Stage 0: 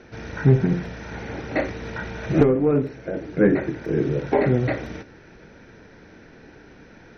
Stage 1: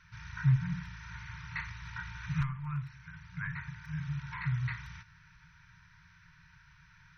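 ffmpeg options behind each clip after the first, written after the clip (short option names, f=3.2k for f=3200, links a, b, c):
-af "afftfilt=real='re*(1-between(b*sr/4096,180,900))':imag='im*(1-between(b*sr/4096,180,900))':win_size=4096:overlap=0.75,volume=-8.5dB"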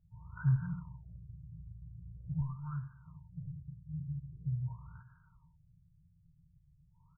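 -af "adynamicsmooth=sensitivity=7:basefreq=1.8k,aecho=1:1:410:0.0668,afftfilt=real='re*lt(b*sr/1024,260*pow(1700/260,0.5+0.5*sin(2*PI*0.44*pts/sr)))':imag='im*lt(b*sr/1024,260*pow(1700/260,0.5+0.5*sin(2*PI*0.44*pts/sr)))':win_size=1024:overlap=0.75,volume=-3dB"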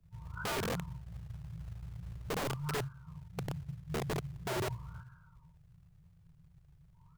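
-filter_complex "[0:a]asoftclip=type=tanh:threshold=-25dB,acrossover=split=130|250|620[a][b][c][d];[a]acrusher=bits=4:mode=log:mix=0:aa=0.000001[e];[e][b][c][d]amix=inputs=4:normalize=0,aeval=exprs='(mod(56.2*val(0)+1,2)-1)/56.2':c=same,volume=4.5dB"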